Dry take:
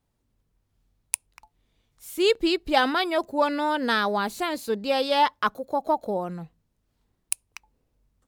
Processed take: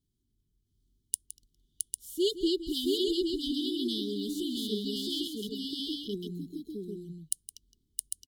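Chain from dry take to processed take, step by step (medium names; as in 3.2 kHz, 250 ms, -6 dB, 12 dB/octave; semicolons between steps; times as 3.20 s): brick-wall FIR band-stop 430–2900 Hz; multi-tap echo 165/667/800 ms -14/-3/-5 dB; trim -4.5 dB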